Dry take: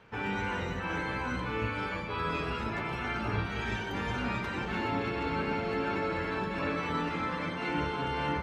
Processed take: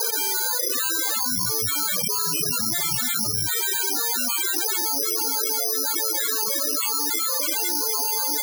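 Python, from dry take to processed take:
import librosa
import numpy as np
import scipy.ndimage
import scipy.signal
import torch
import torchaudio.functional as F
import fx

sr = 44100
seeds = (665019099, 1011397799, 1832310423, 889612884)

y = fx.dereverb_blind(x, sr, rt60_s=1.7)
y = fx.highpass(y, sr, hz=fx.steps((0.0, 300.0), (1.17, 100.0), (3.48, 290.0)), slope=24)
y = fx.spec_topn(y, sr, count=8)
y = fx.air_absorb(y, sr, metres=220.0)
y = (np.kron(y[::8], np.eye(8)[0]) * 8)[:len(y)]
y = fx.env_flatten(y, sr, amount_pct=100)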